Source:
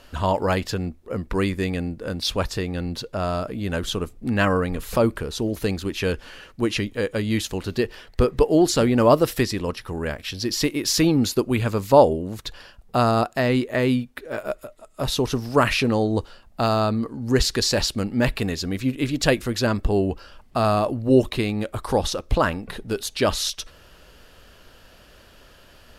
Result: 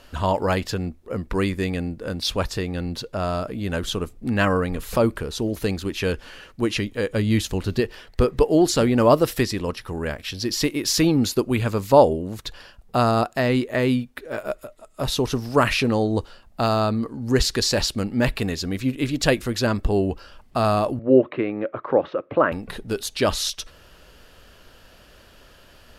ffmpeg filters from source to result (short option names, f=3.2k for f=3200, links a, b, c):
-filter_complex "[0:a]asettb=1/sr,asplit=3[a][b][c];[a]atrim=end=7.104[d];[b]atrim=start=7.1:end=7.8,asetpts=PTS-STARTPTS,afade=t=in:d=0.004:c=qsin,afade=t=out:st=0.696:d=0.004:c=qsin,lowshelf=f=180:g=7[e];[c]atrim=start=7.796[f];[d][e]acrossfade=d=0.004:c1=hsin:c2=qsin[g];[g][f]acrossfade=d=0.004:c1=qsin:c2=hsin,asettb=1/sr,asplit=3[h][i][j];[h]atrim=end=20.994[k];[i]atrim=start=20.99:end=22.52,asetpts=PTS-STARTPTS,afade=t=in:d=0.004:c=qsin,afade=t=out:st=1.526:d=0.004:c=qsin,highpass=f=150:w=0.5412,highpass=f=150:w=1.3066,equalizer=f=200:t=q:w=4:g=-8,equalizer=f=320:t=q:w=4:g=4,equalizer=f=560:t=q:w=4:g=6,equalizer=f=830:t=q:w=4:g=-4,equalizer=f=1.3k:t=q:w=4:g=3,lowpass=f=2.2k:w=0.5412,lowpass=f=2.2k:w=1.3066[l];[j]atrim=start=22.516[m];[k][l]acrossfade=d=0.004:c1=hsin:c2=qsin[n];[n][m]acrossfade=d=0.004:c1=qsin:c2=hsin"